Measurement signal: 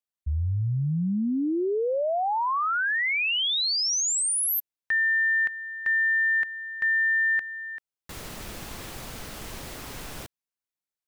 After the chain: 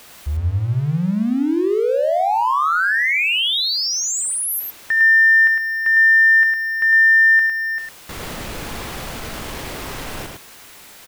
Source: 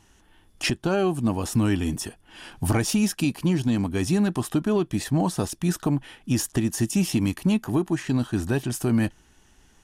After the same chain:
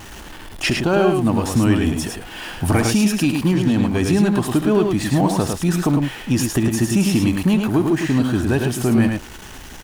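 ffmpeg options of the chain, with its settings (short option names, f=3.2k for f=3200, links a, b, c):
-filter_complex "[0:a]aeval=exprs='val(0)+0.5*0.015*sgn(val(0))':c=same,bass=f=250:g=-2,treble=f=4k:g=-5,asplit=2[a][b];[b]aecho=0:1:70|105:0.224|0.596[c];[a][c]amix=inputs=2:normalize=0,volume=5.5dB"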